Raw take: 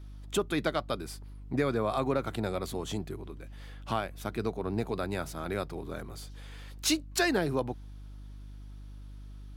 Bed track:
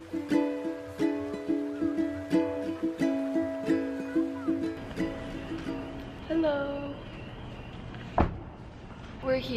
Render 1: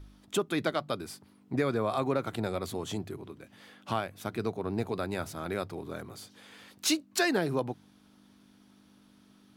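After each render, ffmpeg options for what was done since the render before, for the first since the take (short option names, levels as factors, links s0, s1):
-af "bandreject=f=50:t=h:w=4,bandreject=f=100:t=h:w=4,bandreject=f=150:t=h:w=4"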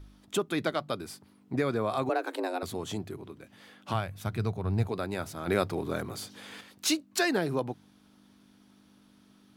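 -filter_complex "[0:a]asettb=1/sr,asplit=3[s0][s1][s2];[s0]atrim=end=2.094[s3];[s1]atrim=start=2.09:end=2.63,asetpts=PTS-STARTPTS,afade=t=in:d=0.004:c=qsin,afade=t=out:st=0.536:d=0.004:c=qsin,afreqshift=170[s4];[s2]atrim=start=2.626[s5];[s3][s4]acrossfade=d=0.004:c1=hsin:c2=qsin[s6];[s6][s5]acrossfade=d=0.004:c1=qsin:c2=hsin,asplit=3[s7][s8][s9];[s7]afade=t=out:st=3.93:d=0.02[s10];[s8]asubboost=boost=8:cutoff=110,afade=t=in:st=3.93:d=0.02,afade=t=out:st=4.87:d=0.02[s11];[s9]afade=t=in:st=4.87:d=0.02[s12];[s10][s11][s12]amix=inputs=3:normalize=0,asettb=1/sr,asplit=3[s13][s14][s15];[s13]atrim=end=5.474[s16];[s14]atrim=start=5.47:end=6.61,asetpts=PTS-STARTPTS,afade=t=in:d=0.004:c=qsin,afade=t=out:st=1.136:d=0.004:c=qsin,acontrast=76[s17];[s15]atrim=start=6.606[s18];[s16][s17]acrossfade=d=0.004:c1=hsin:c2=qsin[s19];[s19][s18]acrossfade=d=0.004:c1=qsin:c2=hsin"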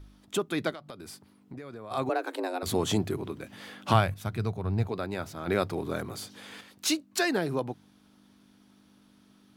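-filter_complex "[0:a]asplit=3[s0][s1][s2];[s0]afade=t=out:st=0.73:d=0.02[s3];[s1]acompressor=threshold=0.0112:ratio=6:attack=3.2:release=140:knee=1:detection=peak,afade=t=in:st=0.73:d=0.02,afade=t=out:st=1.9:d=0.02[s4];[s2]afade=t=in:st=1.9:d=0.02[s5];[s3][s4][s5]amix=inputs=3:normalize=0,asettb=1/sr,asplit=3[s6][s7][s8];[s6]atrim=end=4.674[s9];[s7]atrim=start=4.67:end=5.62,asetpts=PTS-STARTPTS,afade=t=in:d=0.004:c=qsin,afade=t=out:st=0.946:d=0.004:c=qsin,equalizer=f=10000:t=o:w=0.86:g=-6[s10];[s8]atrim=start=5.616[s11];[s9][s10]acrossfade=d=0.004:c1=hsin:c2=qsin[s12];[s12][s11]acrossfade=d=0.004:c1=qsin:c2=hsin,asplit=3[s13][s14][s15];[s13]atrim=end=2.662[s16];[s14]atrim=start=2.658:end=4.142,asetpts=PTS-STARTPTS,volume=2.66[s17];[s15]atrim=start=4.138[s18];[s16][s17]acrossfade=d=0.004:c1=hsin:c2=hsin[s19];[s19][s18]acrossfade=d=0.004:c1=hsin:c2=hsin"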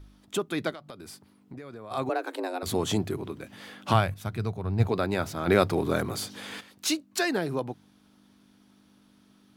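-filter_complex "[0:a]asplit=3[s0][s1][s2];[s0]afade=t=out:st=4.79:d=0.02[s3];[s1]acontrast=56,afade=t=in:st=4.79:d=0.02,afade=t=out:st=6.59:d=0.02[s4];[s2]afade=t=in:st=6.59:d=0.02[s5];[s3][s4][s5]amix=inputs=3:normalize=0"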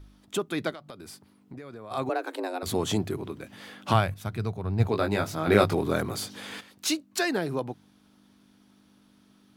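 -filter_complex "[0:a]asettb=1/sr,asplit=3[s0][s1][s2];[s0]atrim=end=4.924[s3];[s1]atrim=start=4.92:end=5.75,asetpts=PTS-STARTPTS,afade=t=in:d=0.004:c=qsin,afade=t=out:st=0.826:d=0.004:c=qsin,asplit=2[s4][s5];[s5]adelay=19,volume=0.631[s6];[s4][s6]amix=inputs=2:normalize=0,atrim=end_sample=36603[s7];[s2]atrim=start=5.746[s8];[s3][s7]acrossfade=d=0.004:c1=hsin:c2=qsin[s9];[s9][s8]acrossfade=d=0.004:c1=qsin:c2=hsin"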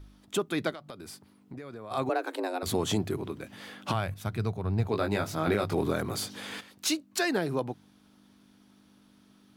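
-af "alimiter=limit=0.15:level=0:latency=1:release=196"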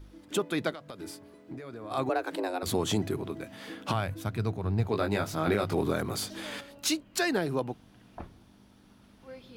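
-filter_complex "[1:a]volume=0.119[s0];[0:a][s0]amix=inputs=2:normalize=0"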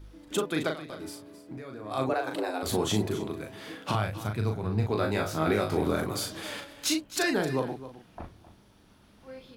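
-filter_complex "[0:a]asplit=2[s0][s1];[s1]adelay=38,volume=0.562[s2];[s0][s2]amix=inputs=2:normalize=0,aecho=1:1:263:0.188"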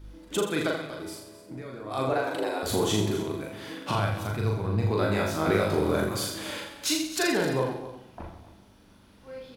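-af "aecho=1:1:40|84|132.4|185.6|244.2:0.631|0.398|0.251|0.158|0.1"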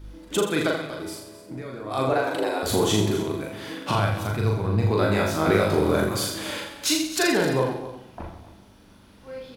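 -af "volume=1.58"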